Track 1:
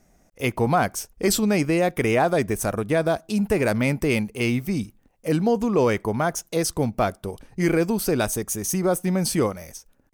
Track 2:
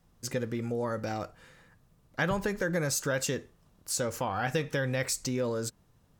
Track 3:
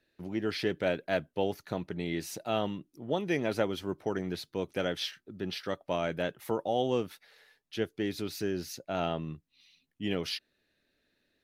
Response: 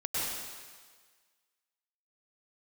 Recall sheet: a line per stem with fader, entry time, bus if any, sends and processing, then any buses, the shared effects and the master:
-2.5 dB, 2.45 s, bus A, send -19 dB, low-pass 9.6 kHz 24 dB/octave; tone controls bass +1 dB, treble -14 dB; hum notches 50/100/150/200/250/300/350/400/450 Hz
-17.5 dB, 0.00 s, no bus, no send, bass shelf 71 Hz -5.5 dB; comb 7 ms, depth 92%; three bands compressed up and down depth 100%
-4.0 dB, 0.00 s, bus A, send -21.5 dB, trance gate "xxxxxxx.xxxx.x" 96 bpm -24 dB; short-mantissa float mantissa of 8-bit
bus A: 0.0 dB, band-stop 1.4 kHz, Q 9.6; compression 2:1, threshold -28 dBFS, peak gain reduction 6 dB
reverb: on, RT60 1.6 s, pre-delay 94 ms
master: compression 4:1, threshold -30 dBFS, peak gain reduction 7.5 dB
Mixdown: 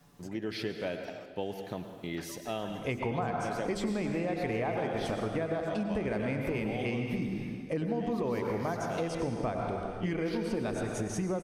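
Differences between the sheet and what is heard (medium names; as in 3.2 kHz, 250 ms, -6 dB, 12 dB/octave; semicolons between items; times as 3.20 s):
stem 2 -17.5 dB -> -24.5 dB; reverb return +8.5 dB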